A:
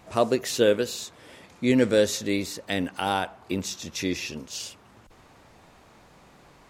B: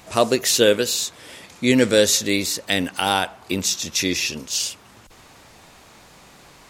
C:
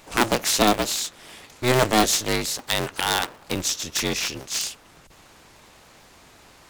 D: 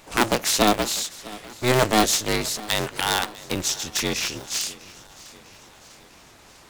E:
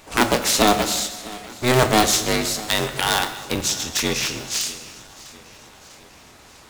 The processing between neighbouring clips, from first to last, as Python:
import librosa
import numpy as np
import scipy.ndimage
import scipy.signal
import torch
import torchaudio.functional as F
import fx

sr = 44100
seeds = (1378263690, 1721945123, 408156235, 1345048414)

y1 = fx.high_shelf(x, sr, hz=2300.0, db=10.0)
y1 = y1 * librosa.db_to_amplitude(3.5)
y2 = fx.cycle_switch(y1, sr, every=2, mode='inverted')
y2 = y2 * librosa.db_to_amplitude(-3.0)
y3 = fx.echo_feedback(y2, sr, ms=649, feedback_pct=55, wet_db=-20.0)
y4 = fx.rev_fdn(y3, sr, rt60_s=1.4, lf_ratio=1.05, hf_ratio=0.85, size_ms=73.0, drr_db=7.0)
y4 = y4 * librosa.db_to_amplitude(2.0)